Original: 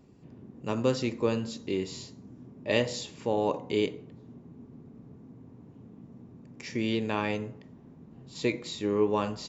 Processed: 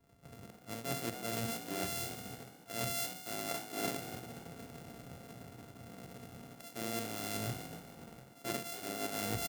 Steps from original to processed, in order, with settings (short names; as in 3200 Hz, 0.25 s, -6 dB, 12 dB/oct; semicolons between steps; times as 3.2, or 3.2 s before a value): sample sorter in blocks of 64 samples; reverse; compressor 10:1, threshold -39 dBFS, peak gain reduction 19 dB; reverse; high shelf 6000 Hz +9.5 dB; wavefolder -24 dBFS; dynamic EQ 1000 Hz, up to -5 dB, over -54 dBFS, Q 1.3; on a send: frequency-shifting echo 0.289 s, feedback 40%, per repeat +57 Hz, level -7 dB; on the sum: three-band expander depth 100%; gain +2.5 dB